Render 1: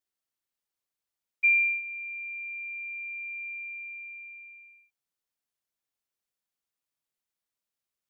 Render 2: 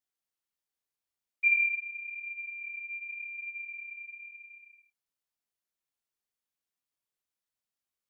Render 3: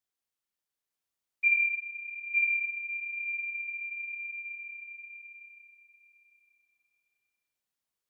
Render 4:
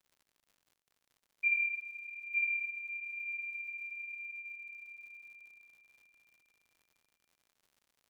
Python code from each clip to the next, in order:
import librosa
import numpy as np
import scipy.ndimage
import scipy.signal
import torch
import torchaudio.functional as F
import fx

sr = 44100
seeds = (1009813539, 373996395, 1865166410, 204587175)

y1 = fx.chorus_voices(x, sr, voices=2, hz=0.85, base_ms=21, depth_ms=2.9, mix_pct=35)
y2 = fx.echo_feedback(y1, sr, ms=905, feedback_pct=19, wet_db=-3.0)
y3 = fx.dmg_crackle(y2, sr, seeds[0], per_s=110.0, level_db=-50.0)
y3 = y3 * librosa.db_to_amplitude(-5.5)